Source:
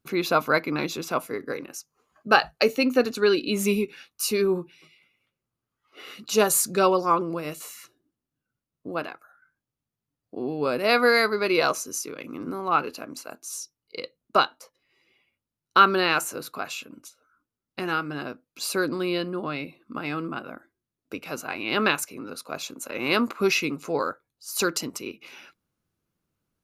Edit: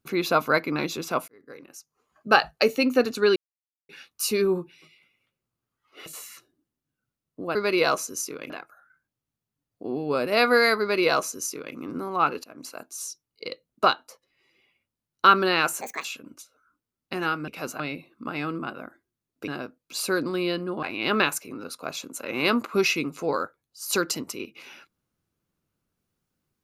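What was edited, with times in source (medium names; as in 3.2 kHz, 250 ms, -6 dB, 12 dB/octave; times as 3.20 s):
1.28–2.34 s: fade in
3.36–3.89 s: mute
6.06–7.53 s: delete
11.32–12.27 s: copy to 9.02 s
12.96–13.21 s: fade in, from -19.5 dB
16.33–16.71 s: speed 160%
18.14–19.49 s: swap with 21.17–21.49 s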